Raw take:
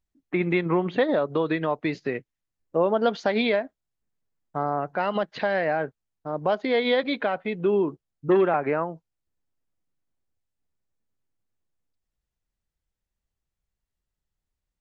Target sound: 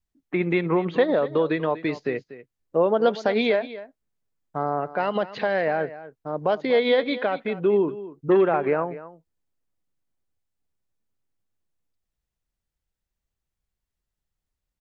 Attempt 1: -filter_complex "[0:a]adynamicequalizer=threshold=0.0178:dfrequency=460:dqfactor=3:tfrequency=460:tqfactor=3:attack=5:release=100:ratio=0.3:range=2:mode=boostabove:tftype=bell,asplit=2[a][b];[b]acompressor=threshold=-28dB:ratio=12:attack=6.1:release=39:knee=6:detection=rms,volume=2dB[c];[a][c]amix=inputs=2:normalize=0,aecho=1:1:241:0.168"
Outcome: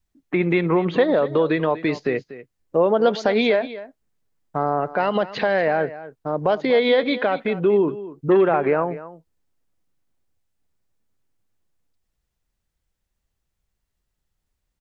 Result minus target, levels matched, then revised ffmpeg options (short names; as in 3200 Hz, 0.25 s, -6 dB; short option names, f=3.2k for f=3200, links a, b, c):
compressor: peak gain reduction +14.5 dB
-af "adynamicequalizer=threshold=0.0178:dfrequency=460:dqfactor=3:tfrequency=460:tqfactor=3:attack=5:release=100:ratio=0.3:range=2:mode=boostabove:tftype=bell,aecho=1:1:241:0.168"